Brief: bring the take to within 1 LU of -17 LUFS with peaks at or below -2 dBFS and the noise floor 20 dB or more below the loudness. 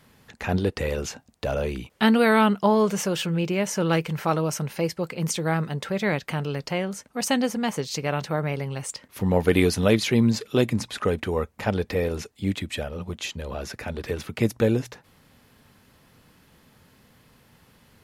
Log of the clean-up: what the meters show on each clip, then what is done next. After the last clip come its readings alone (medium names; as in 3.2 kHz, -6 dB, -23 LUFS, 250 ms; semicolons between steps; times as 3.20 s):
loudness -25.0 LUFS; peak level -5.5 dBFS; loudness target -17.0 LUFS
-> trim +8 dB; peak limiter -2 dBFS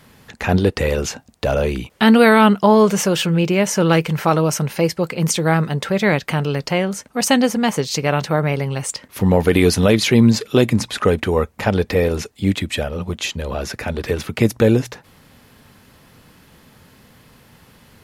loudness -17.5 LUFS; peak level -2.0 dBFS; noise floor -51 dBFS